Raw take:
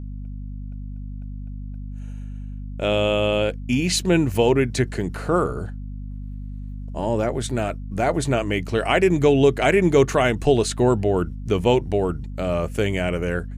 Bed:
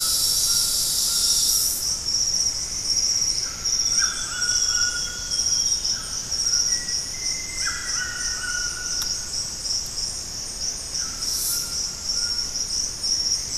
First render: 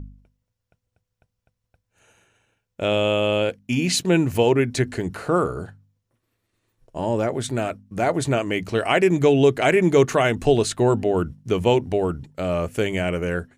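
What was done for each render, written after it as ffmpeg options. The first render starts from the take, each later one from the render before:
-af "bandreject=f=50:t=h:w=4,bandreject=f=100:t=h:w=4,bandreject=f=150:t=h:w=4,bandreject=f=200:t=h:w=4,bandreject=f=250:t=h:w=4"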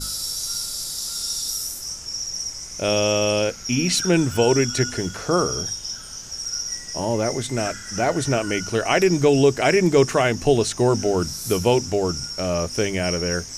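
-filter_complex "[1:a]volume=-7dB[a];[0:a][a]amix=inputs=2:normalize=0"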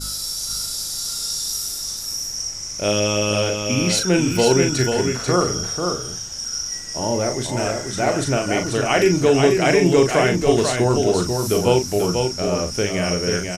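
-filter_complex "[0:a]asplit=2[a][b];[b]adelay=39,volume=-6.5dB[c];[a][c]amix=inputs=2:normalize=0,aecho=1:1:490:0.562"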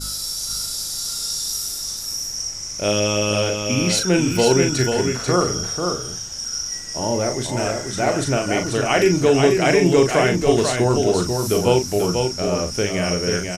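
-af anull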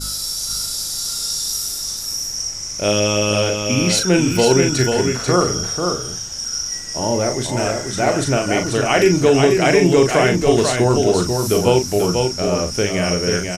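-af "volume=2.5dB,alimiter=limit=-3dB:level=0:latency=1"

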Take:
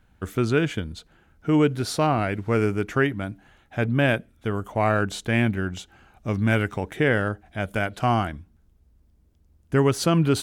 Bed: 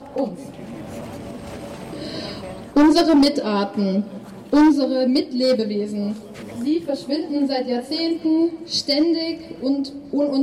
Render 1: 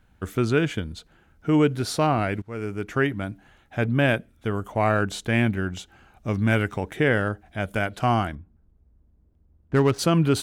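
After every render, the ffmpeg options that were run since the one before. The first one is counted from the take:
-filter_complex "[0:a]asettb=1/sr,asplit=3[a][b][c];[a]atrim=end=8.354[d];[b]atrim=start=8.35:end=9.99,asetpts=PTS-STARTPTS,afade=t=in:d=0.004:c=qsin,afade=t=out:st=1.636:d=0.004:c=qsin,adynamicsmooth=sensitivity=4.5:basefreq=1.6k[e];[c]atrim=start=9.986[f];[d][e]acrossfade=d=0.004:c1=hsin:c2=qsin[g];[g][f]acrossfade=d=0.004:c1=qsin:c2=hsin,asplit=2[h][i];[h]atrim=end=2.42,asetpts=PTS-STARTPTS,afade=t=out:st=2.416:d=0.004:c=hsin:silence=0.1[j];[i]atrim=start=2.42,asetpts=PTS-STARTPTS,afade=t=in:d=0.69:silence=0.1[k];[j][k]concat=n=2:v=0:a=1"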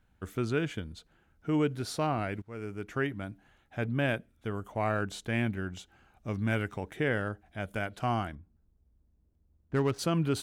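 -af "volume=-8.5dB"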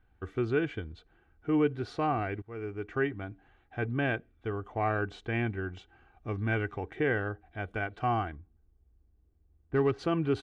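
-af "lowpass=2.6k,aecho=1:1:2.6:0.52"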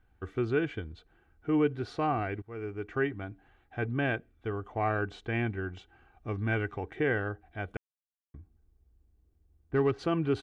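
-filter_complex "[0:a]asplit=3[a][b][c];[a]atrim=end=7.77,asetpts=PTS-STARTPTS,afade=t=out:st=7.766:d=0.004:c=hsin[d];[b]atrim=start=7.77:end=8.34,asetpts=PTS-STARTPTS,volume=0[e];[c]atrim=start=8.34,asetpts=PTS-STARTPTS,afade=t=in:d=0.004:c=hsin[f];[d][e][f]concat=n=3:v=0:a=1"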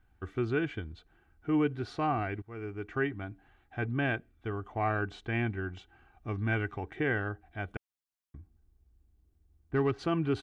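-af "equalizer=f=490:w=3.3:g=-6"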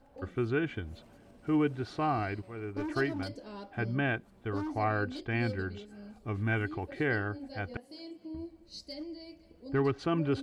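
-filter_complex "[1:a]volume=-24dB[a];[0:a][a]amix=inputs=2:normalize=0"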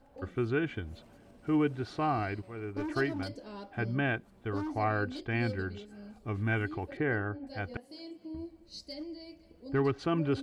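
-filter_complex "[0:a]asettb=1/sr,asplit=3[a][b][c];[a]atrim=end=6.974[d];[b]atrim=start=6.97:end=7.47,asetpts=PTS-STARTPTS,afade=t=in:d=0.004:c=qsin,afade=t=out:st=0.496:d=0.004:c=qsin,lowpass=2k[e];[c]atrim=start=7.466[f];[d][e]acrossfade=d=0.004:c1=hsin:c2=qsin[g];[g][f]acrossfade=d=0.004:c1=qsin:c2=hsin"

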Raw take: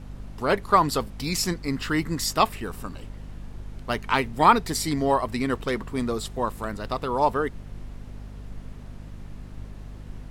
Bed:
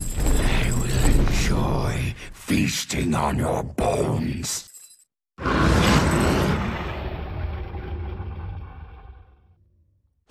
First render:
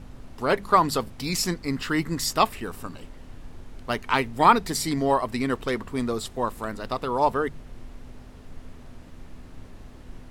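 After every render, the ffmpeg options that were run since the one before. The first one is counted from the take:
-af "bandreject=f=50:t=h:w=4,bandreject=f=100:t=h:w=4,bandreject=f=150:t=h:w=4,bandreject=f=200:t=h:w=4"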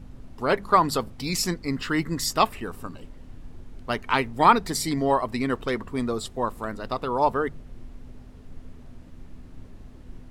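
-af "afftdn=nr=6:nf=-45"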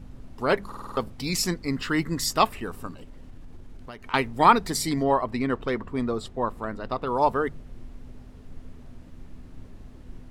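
-filter_complex "[0:a]asettb=1/sr,asplit=3[a][b][c];[a]atrim=end=2.934[d];[b]atrim=start=2.93:end=4.14,asetpts=PTS-STARTPTS,afade=t=in:d=0.004:c=qsin,afade=t=out:st=1.206:d=0.004:c=qsin,acompressor=threshold=-37dB:ratio=6:attack=3.2:release=140:knee=1:detection=peak[e];[c]atrim=start=4.136[f];[d][e]acrossfade=d=0.004:c1=hsin:c2=qsin[g];[g][f]acrossfade=d=0.004:c1=qsin:c2=hsin,asettb=1/sr,asplit=3[h][i][j];[h]atrim=end=5.034[k];[i]atrim=start=5.03:end=7.07,asetpts=PTS-STARTPTS,afade=t=in:d=0.004:c=qsin,afade=t=out:st=2.036:d=0.004:c=qsin,lowpass=f=2.8k:p=1[l];[j]atrim=start=7.066[m];[k][l]acrossfade=d=0.004:c1=hsin:c2=qsin[n];[n][m]acrossfade=d=0.004:c1=qsin:c2=hsin,asplit=7[o][p][q][r][s][t][u];[o]atrim=end=0.722[v];[p]atrim=start=0.668:end=0.722[w];[q]atrim=start=0.668:end=0.722[x];[r]atrim=start=0.668:end=0.722[y];[s]atrim=start=0.668:end=0.722[z];[t]atrim=start=0.668:end=0.722[aa];[u]atrim=start=0.968[ab];[v][w]acrossfade=d=0.004:c1=hsin:c2=hsin[ac];[ac][x]acrossfade=d=0.004:c1=hsin:c2=hsin[ad];[ad][y]acrossfade=d=0.004:c1=hsin:c2=hsin[ae];[ae][z]acrossfade=d=0.004:c1=hsin:c2=hsin[af];[af][aa]acrossfade=d=0.004:c1=hsin:c2=hsin[ag];[ag][ab]acrossfade=d=0.004:c1=hsin:c2=hsin"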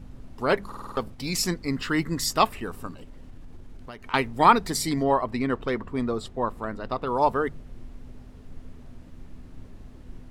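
-filter_complex "[0:a]asettb=1/sr,asplit=3[a][b][c];[a]atrim=end=0.934[d];[b]atrim=start=0.93:end=1.36,asetpts=PTS-STARTPTS,afade=t=in:d=0.004:c=qsin,afade=t=out:st=0.426:d=0.004:c=qsin,aeval=exprs='if(lt(val(0),0),0.708*val(0),val(0))':c=same[e];[c]atrim=start=1.356[f];[d][e]acrossfade=d=0.004:c1=hsin:c2=qsin[g];[g][f]acrossfade=d=0.004:c1=qsin:c2=hsin"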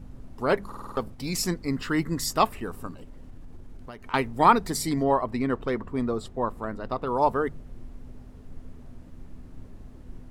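-af "equalizer=f=3.3k:t=o:w=2.1:g=-4.5"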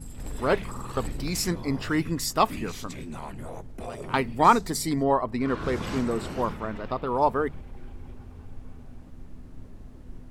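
-filter_complex "[1:a]volume=-16dB[a];[0:a][a]amix=inputs=2:normalize=0"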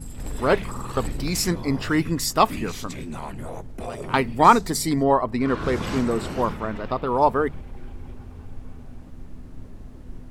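-af "volume=4dB"

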